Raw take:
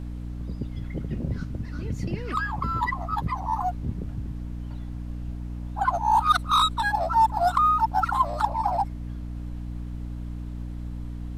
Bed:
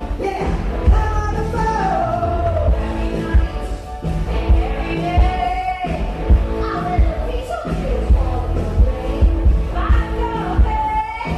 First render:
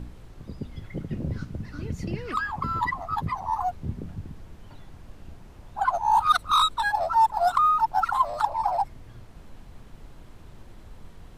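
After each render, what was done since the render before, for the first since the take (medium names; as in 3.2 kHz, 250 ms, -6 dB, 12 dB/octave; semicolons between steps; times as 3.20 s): de-hum 60 Hz, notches 5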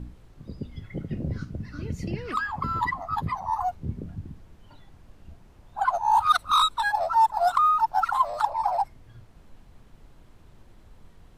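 noise print and reduce 6 dB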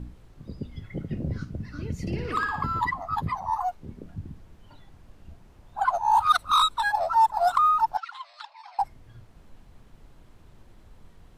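2.01–2.66 s: flutter echo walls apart 9.8 m, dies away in 0.63 s; 3.57–4.15 s: peaking EQ 99 Hz -12 dB 2.3 oct; 7.97–8.79 s: Butterworth band-pass 3.1 kHz, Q 1.1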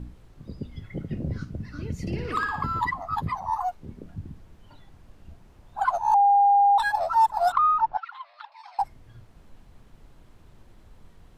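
6.14–6.78 s: bleep 806 Hz -14.5 dBFS; 7.52–8.52 s: low-pass 2.5 kHz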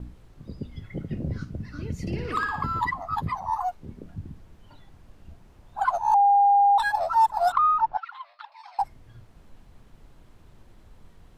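gate with hold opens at -46 dBFS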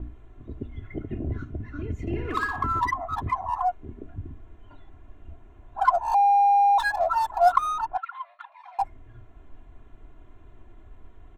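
local Wiener filter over 9 samples; comb 2.9 ms, depth 76%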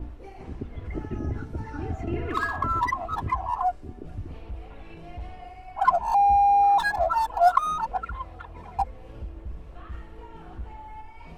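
add bed -24 dB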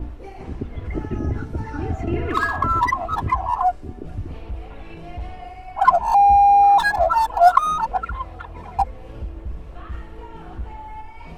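trim +6 dB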